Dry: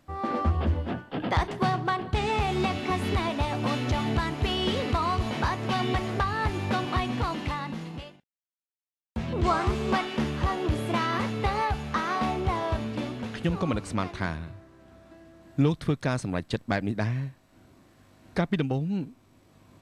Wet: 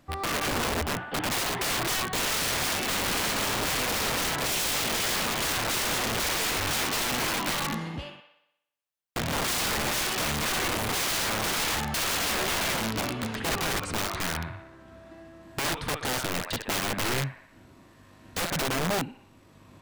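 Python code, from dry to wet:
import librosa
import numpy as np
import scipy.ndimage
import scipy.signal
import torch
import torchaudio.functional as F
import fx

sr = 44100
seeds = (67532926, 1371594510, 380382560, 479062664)

y = fx.echo_wet_bandpass(x, sr, ms=61, feedback_pct=59, hz=1600.0, wet_db=-3)
y = (np.mod(10.0 ** (25.5 / 20.0) * y + 1.0, 2.0) - 1.0) / 10.0 ** (25.5 / 20.0)
y = F.gain(torch.from_numpy(y), 2.5).numpy()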